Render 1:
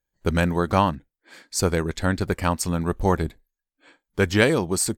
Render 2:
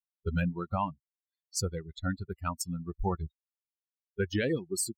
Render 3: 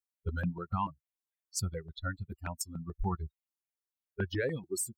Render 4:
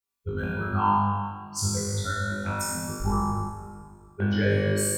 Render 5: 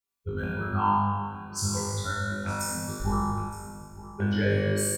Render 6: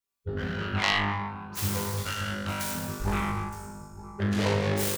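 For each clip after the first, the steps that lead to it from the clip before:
spectral dynamics exaggerated over time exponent 3; brickwall limiter −18 dBFS, peak gain reduction 10.5 dB; level −2 dB
step-sequenced phaser 6.9 Hz 560–2,100 Hz
flutter between parallel walls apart 3.4 metres, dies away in 1.1 s; dense smooth reverb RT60 2.1 s, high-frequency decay 0.85×, DRR −1.5 dB
single-tap delay 917 ms −16 dB; level −1.5 dB
phase distortion by the signal itself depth 0.76 ms

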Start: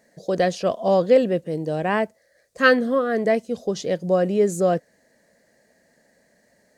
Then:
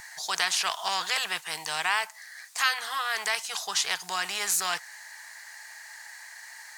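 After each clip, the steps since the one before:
elliptic high-pass filter 870 Hz, stop band 40 dB
downward compressor 1.5 to 1, threshold −34 dBFS, peak gain reduction 8 dB
every bin compressed towards the loudest bin 2 to 1
level +3 dB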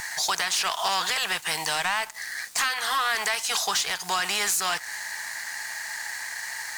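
downward compressor, threshold −31 dBFS, peak gain reduction 11.5 dB
leveller curve on the samples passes 3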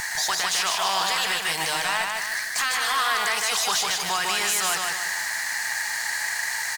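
brickwall limiter −23.5 dBFS, peak gain reduction 6.5 dB
repeating echo 152 ms, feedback 43%, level −3 dB
level +4.5 dB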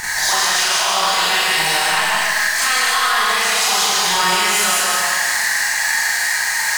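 delay that plays each chunk backwards 160 ms, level −3 dB
brickwall limiter −17 dBFS, peak gain reduction 6 dB
four-comb reverb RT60 0.73 s, combs from 30 ms, DRR −6.5 dB
level +2 dB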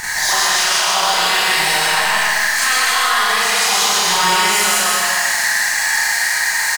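single-tap delay 125 ms −4.5 dB

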